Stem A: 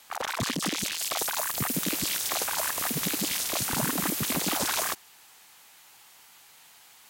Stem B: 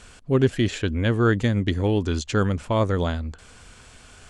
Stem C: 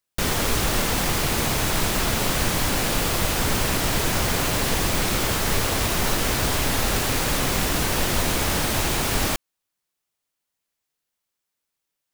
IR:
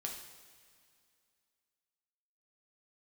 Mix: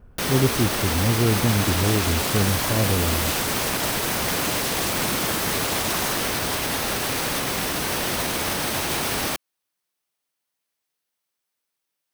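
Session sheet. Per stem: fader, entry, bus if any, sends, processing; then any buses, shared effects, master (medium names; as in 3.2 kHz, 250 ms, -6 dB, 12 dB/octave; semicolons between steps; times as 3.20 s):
-2.5 dB, 1.25 s, no send, none
-7.5 dB, 0.00 s, no send, low-pass 1 kHz 12 dB/octave; bass shelf 370 Hz +9.5 dB
+1.0 dB, 0.00 s, no send, high-pass 180 Hz 6 dB/octave; band-stop 7.1 kHz, Q 11; peak limiter -16 dBFS, peak gain reduction 4 dB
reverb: none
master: none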